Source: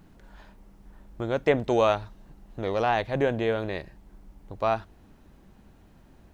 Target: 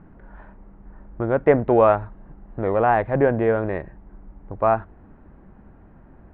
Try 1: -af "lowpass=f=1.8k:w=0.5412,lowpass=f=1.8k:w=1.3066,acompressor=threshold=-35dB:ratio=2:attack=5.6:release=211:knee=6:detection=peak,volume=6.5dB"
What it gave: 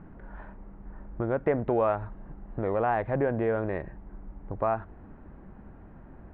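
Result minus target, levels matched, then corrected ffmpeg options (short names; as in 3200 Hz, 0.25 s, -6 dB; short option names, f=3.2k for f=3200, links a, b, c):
compressor: peak gain reduction +11 dB
-af "lowpass=f=1.8k:w=0.5412,lowpass=f=1.8k:w=1.3066,volume=6.5dB"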